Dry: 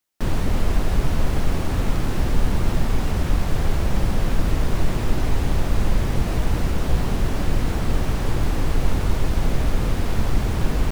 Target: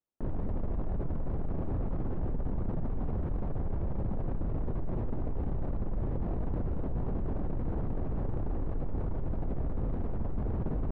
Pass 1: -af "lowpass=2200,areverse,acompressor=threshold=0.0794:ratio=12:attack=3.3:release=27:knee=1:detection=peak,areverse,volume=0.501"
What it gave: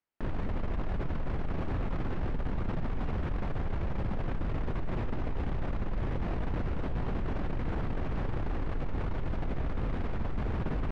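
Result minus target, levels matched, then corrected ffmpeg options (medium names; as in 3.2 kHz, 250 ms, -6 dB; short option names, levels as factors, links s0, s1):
2 kHz band +13.0 dB
-af "lowpass=740,areverse,acompressor=threshold=0.0794:ratio=12:attack=3.3:release=27:knee=1:detection=peak,areverse,volume=0.501"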